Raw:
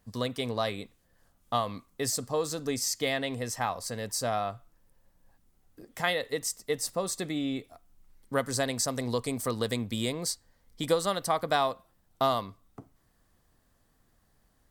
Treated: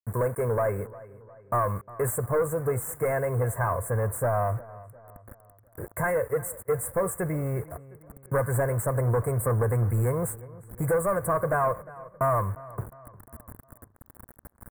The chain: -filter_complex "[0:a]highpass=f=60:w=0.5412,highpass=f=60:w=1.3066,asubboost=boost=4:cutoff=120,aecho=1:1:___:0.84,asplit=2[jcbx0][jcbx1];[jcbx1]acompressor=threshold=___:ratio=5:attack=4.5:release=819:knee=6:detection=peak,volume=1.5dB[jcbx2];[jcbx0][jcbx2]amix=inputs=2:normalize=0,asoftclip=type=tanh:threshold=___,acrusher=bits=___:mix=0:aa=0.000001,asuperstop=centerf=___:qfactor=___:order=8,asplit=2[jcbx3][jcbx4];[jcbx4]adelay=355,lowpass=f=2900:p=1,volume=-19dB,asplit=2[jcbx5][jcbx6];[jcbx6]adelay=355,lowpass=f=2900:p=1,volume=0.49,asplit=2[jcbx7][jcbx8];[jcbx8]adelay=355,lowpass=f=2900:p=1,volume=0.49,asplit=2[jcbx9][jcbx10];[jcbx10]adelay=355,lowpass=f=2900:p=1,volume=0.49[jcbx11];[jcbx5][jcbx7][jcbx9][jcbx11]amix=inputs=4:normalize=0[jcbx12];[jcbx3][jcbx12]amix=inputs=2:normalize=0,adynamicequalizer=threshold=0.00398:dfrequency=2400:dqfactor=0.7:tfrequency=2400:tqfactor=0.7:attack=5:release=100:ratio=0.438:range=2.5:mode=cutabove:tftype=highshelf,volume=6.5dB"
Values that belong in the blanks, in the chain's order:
1.9, -41dB, -26.5dB, 7, 4100, 0.57